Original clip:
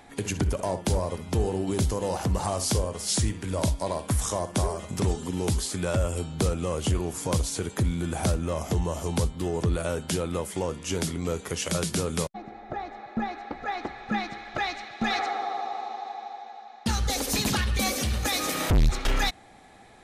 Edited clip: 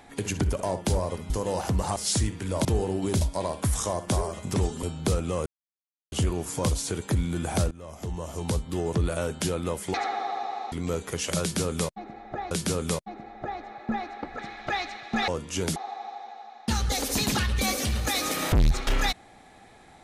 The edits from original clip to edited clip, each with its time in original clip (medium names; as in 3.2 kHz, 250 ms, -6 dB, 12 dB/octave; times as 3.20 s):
1.30–1.86 s: move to 3.67 s
2.52–2.98 s: delete
5.29–6.17 s: delete
6.80 s: insert silence 0.66 s
8.39–9.45 s: fade in, from -19 dB
10.62–11.10 s: swap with 15.16–15.94 s
11.79–12.89 s: loop, 2 plays
13.67–14.27 s: delete